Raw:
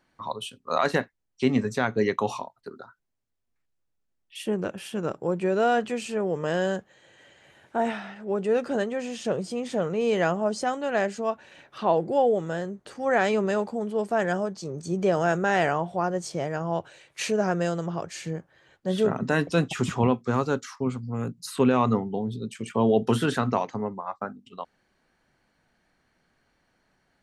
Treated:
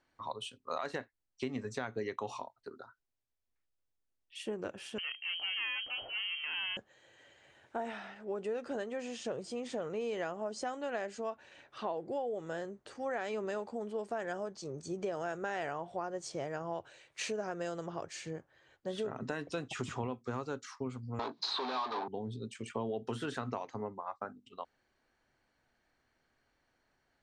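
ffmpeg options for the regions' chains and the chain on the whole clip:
ffmpeg -i in.wav -filter_complex "[0:a]asettb=1/sr,asplit=3[link_01][link_02][link_03];[link_01]atrim=end=4.984[link_04];[link_02]atrim=start=4.98:end=6.77,asetpts=PTS-STARTPTS,afade=type=in:duration=0.004:curve=qsin,afade=type=out:start_time=1.786:duration=0.004:curve=qsin,acrusher=bits=6:mode=log:mix=0:aa=0.000001,aeval=exprs='clip(val(0),-1,0.0237)':channel_layout=same,lowpass=frequency=2700:width_type=q:width=0.5098,lowpass=frequency=2700:width_type=q:width=0.6013,lowpass=frequency=2700:width_type=q:width=0.9,lowpass=frequency=2700:width_type=q:width=2.563,afreqshift=-3200[link_05];[link_03]atrim=start=6.766[link_06];[link_04][link_05]acrossfade=duration=0.004:curve1=hsin:curve2=qsin[link_07];[link_07][link_06]acrossfade=duration=0.004:curve1=qsin:curve2=hsin,asettb=1/sr,asplit=3[link_08][link_09][link_10];[link_08]atrim=end=21.194[link_11];[link_09]atrim=start=21.19:end=22.08,asetpts=PTS-STARTPTS,afade=type=in:duration=0.004:curve=qsin,afade=type=out:start_time=0.886:duration=0.004:curve=qsin,asplit=2[link_12][link_13];[link_13]highpass=frequency=720:poles=1,volume=36dB,asoftclip=type=tanh:threshold=-9.5dB[link_14];[link_12][link_14]amix=inputs=2:normalize=0,lowpass=frequency=2400:poles=1,volume=-6dB,highpass=500,equalizer=frequency=520:width_type=q:width=4:gain=-10,equalizer=frequency=930:width_type=q:width=4:gain=5,equalizer=frequency=1400:width_type=q:width=4:gain=-7,equalizer=frequency=2000:width_type=q:width=4:gain=-8,equalizer=frequency=2800:width_type=q:width=4:gain=-9,equalizer=frequency=4000:width_type=q:width=4:gain=8,lowpass=frequency=4700:width=0.5412,lowpass=frequency=4700:width=1.3066,asplit=2[link_15][link_16];[link_16]adelay=20,volume=-12.5dB[link_17];[link_15][link_17]amix=inputs=2:normalize=0,atrim=end_sample=39249[link_18];[link_10]atrim=start=22.076[link_19];[link_11][link_18]acrossfade=duration=0.004:curve1=hsin:curve2=qsin[link_20];[link_20][link_19]acrossfade=duration=0.004:curve1=qsin:curve2=hsin,lowpass=frequency=8900:width=0.5412,lowpass=frequency=8900:width=1.3066,equalizer=frequency=180:width_type=o:width=0.49:gain=-9,acompressor=threshold=-27dB:ratio=6,volume=-6.5dB" out.wav

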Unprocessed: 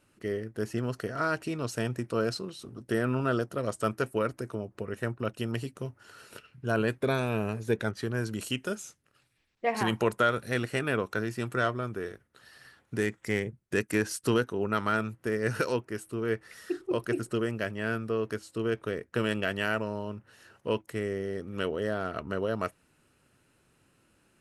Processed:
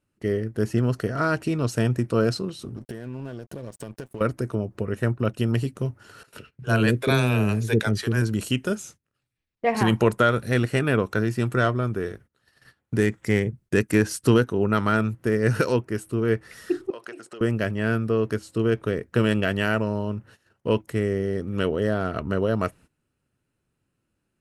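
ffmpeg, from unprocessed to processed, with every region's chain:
ffmpeg -i in.wav -filter_complex "[0:a]asettb=1/sr,asplit=3[link_01][link_02][link_03];[link_01]atrim=end=2.764[link_04];[link_02]atrim=start=2.76:end=4.21,asetpts=PTS-STARTPTS,afade=type=in:duration=0.004:curve=qsin,afade=type=out:start_time=1.446:duration=0.004:curve=qsin,asuperstop=centerf=1300:order=4:qfactor=5,acompressor=threshold=-38dB:ratio=12:attack=3.2:release=140:knee=1:detection=peak,aeval=exprs='sgn(val(0))*max(abs(val(0))-0.00168,0)':channel_layout=same[link_05];[link_03]atrim=start=4.206[link_06];[link_04][link_05]acrossfade=duration=0.004:curve1=hsin:curve2=qsin[link_07];[link_07][link_06]acrossfade=duration=0.004:curve1=qsin:curve2=hsin,asettb=1/sr,asplit=3[link_08][link_09][link_10];[link_08]atrim=end=6.234[link_11];[link_09]atrim=start=6.23:end=8.22,asetpts=PTS-STARTPTS,afade=type=in:duration=0.004:curve=qsin,afade=type=out:start_time=1.986:duration=0.004:curve=qsin,acrossover=split=520[link_12][link_13];[link_12]adelay=40[link_14];[link_14][link_13]amix=inputs=2:normalize=0,atrim=end_sample=87759,adynamicequalizer=threshold=0.00501:dfrequency=1700:dqfactor=0.7:tfrequency=1700:tqfactor=0.7:attack=5:release=100:ratio=0.375:range=3.5:mode=boostabove:tftype=highshelf[link_15];[link_10]atrim=start=8.216[link_16];[link_11][link_15]acrossfade=duration=0.004:curve1=hsin:curve2=qsin[link_17];[link_17][link_16]acrossfade=duration=0.004:curve1=qsin:curve2=hsin,asettb=1/sr,asplit=3[link_18][link_19][link_20];[link_18]atrim=end=16.904[link_21];[link_19]atrim=start=16.9:end=17.41,asetpts=PTS-STARTPTS,afade=type=in:duration=0.004:curve=qsin,afade=type=out:start_time=0.506:duration=0.004:curve=qsin,acompressor=threshold=-34dB:ratio=10:attack=3.2:release=140:knee=1:detection=peak,highpass=570,lowpass=7500[link_22];[link_20]atrim=start=17.406[link_23];[link_21][link_22]acrossfade=duration=0.004:curve1=hsin:curve2=qsin[link_24];[link_24][link_23]acrossfade=duration=0.004:curve1=qsin:curve2=hsin,lowshelf=frequency=290:gain=8.5,agate=range=-18dB:threshold=-51dB:ratio=16:detection=peak,volume=4dB" out.wav

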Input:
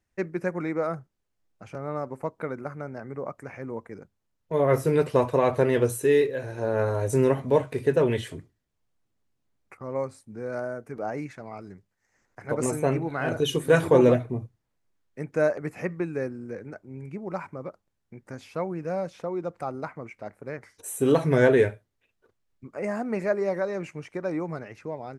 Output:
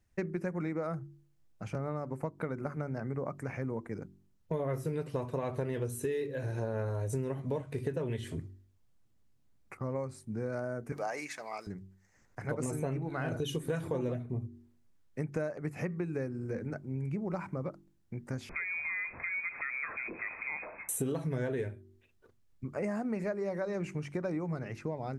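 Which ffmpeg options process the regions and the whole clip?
ffmpeg -i in.wav -filter_complex "[0:a]asettb=1/sr,asplit=3[link_01][link_02][link_03];[link_01]atrim=end=10.924[link_04];[link_02]atrim=start=10.92:end=11.67,asetpts=PTS-STARTPTS,afade=type=in:duration=0.004:curve=qsin,afade=type=out:start_time=0.746:duration=0.004:curve=qsin,highpass=610,highshelf=frequency=2100:gain=9.5,bandreject=frequency=1400:width=11[link_05];[link_03]atrim=start=11.666[link_06];[link_04][link_05]acrossfade=duration=0.004:curve1=hsin:curve2=qsin[link_07];[link_07][link_06]acrossfade=duration=0.004:curve1=qsin:curve2=hsin,asettb=1/sr,asplit=3[link_08][link_09][link_10];[link_08]atrim=end=18.494[link_11];[link_09]atrim=start=18.49:end=20.89,asetpts=PTS-STARTPTS,afade=type=in:duration=0.004:curve=qsin,afade=type=out:start_time=2.396:duration=0.004:curve=qsin,aeval=exprs='val(0)+0.5*0.0112*sgn(val(0))':channel_layout=same,acompressor=threshold=-34dB:ratio=2.5:attack=3.2:release=140:knee=1:detection=peak,lowpass=frequency=2200:width_type=q:width=0.5098,lowpass=frequency=2200:width_type=q:width=0.6013,lowpass=frequency=2200:width_type=q:width=0.9,lowpass=frequency=2200:width_type=q:width=2.563,afreqshift=-2600[link_12];[link_10]atrim=start=20.886[link_13];[link_11][link_12]acrossfade=duration=0.004:curve1=hsin:curve2=qsin[link_14];[link_14][link_13]acrossfade=duration=0.004:curve1=qsin:curve2=hsin,bass=frequency=250:gain=8,treble=frequency=4000:gain=2,bandreject=frequency=47.77:width_type=h:width=4,bandreject=frequency=95.54:width_type=h:width=4,bandreject=frequency=143.31:width_type=h:width=4,bandreject=frequency=191.08:width_type=h:width=4,bandreject=frequency=238.85:width_type=h:width=4,bandreject=frequency=286.62:width_type=h:width=4,bandreject=frequency=334.39:width_type=h:width=4,bandreject=frequency=382.16:width_type=h:width=4,acompressor=threshold=-31dB:ratio=10" out.wav

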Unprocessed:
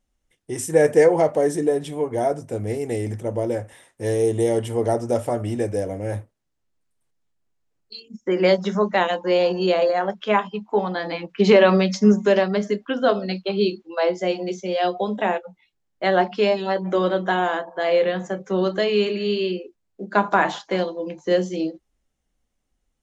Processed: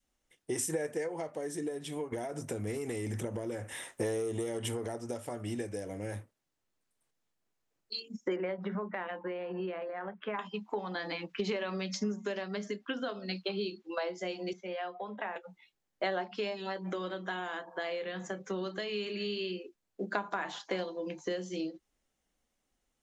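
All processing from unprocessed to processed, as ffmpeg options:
ffmpeg -i in.wav -filter_complex "[0:a]asettb=1/sr,asplit=3[link_01][link_02][link_03];[link_01]atrim=end=2.124[link_04];[link_02]atrim=start=2.12:end=4.95,asetpts=PTS-STARTPTS,afade=type=in:duration=0.004:curve=qsin,afade=type=out:start_time=2.826:duration=0.004:curve=qsin,equalizer=frequency=4600:width_type=o:width=0.27:gain=-3.5,acompressor=threshold=-26dB:ratio=4:attack=3.2:release=140:knee=1:detection=peak,aeval=exprs='0.237*sin(PI/2*1.78*val(0)/0.237)':channel_layout=same[link_05];[link_03]atrim=start=4.946[link_06];[link_04][link_05]acrossfade=duration=0.004:curve1=hsin:curve2=qsin[link_07];[link_07][link_06]acrossfade=duration=0.004:curve1=qsin:curve2=hsin,asettb=1/sr,asplit=3[link_08][link_09][link_10];[link_08]atrim=end=8.364[link_11];[link_09]atrim=start=8.36:end=10.39,asetpts=PTS-STARTPTS,afade=type=in:duration=0.004:curve=qsin,afade=type=out:start_time=2.026:duration=0.004:curve=qsin,lowpass=frequency=2200:width=0.5412,lowpass=frequency=2200:width=1.3066,acompressor=threshold=-22dB:ratio=2.5:attack=3.2:release=140:knee=1:detection=peak[link_12];[link_10]atrim=start=10.386[link_13];[link_11][link_12]acrossfade=duration=0.004:curve1=hsin:curve2=qsin[link_14];[link_14][link_13]acrossfade=duration=0.004:curve1=qsin:curve2=hsin,asettb=1/sr,asplit=3[link_15][link_16][link_17];[link_15]atrim=end=14.534[link_18];[link_16]atrim=start=14.53:end=15.36,asetpts=PTS-STARTPTS,afade=type=in:duration=0.004:curve=qsin,afade=type=out:start_time=0.826:duration=0.004:curve=qsin,highpass=frequency=180:width_type=q:width=1.8,acrossover=split=540 2300:gain=0.158 1 0.0708[link_19][link_20][link_21];[link_19][link_20][link_21]amix=inputs=3:normalize=0[link_22];[link_17]atrim=start=15.356[link_23];[link_18][link_22]acrossfade=duration=0.004:curve1=hsin:curve2=qsin[link_24];[link_24][link_23]acrossfade=duration=0.004:curve1=qsin:curve2=hsin,lowshelf=frequency=160:gain=-11.5,acompressor=threshold=-30dB:ratio=6,adynamicequalizer=threshold=0.00398:dfrequency=620:dqfactor=0.92:tfrequency=620:tqfactor=0.92:attack=5:release=100:ratio=0.375:range=4:mode=cutabove:tftype=bell" out.wav

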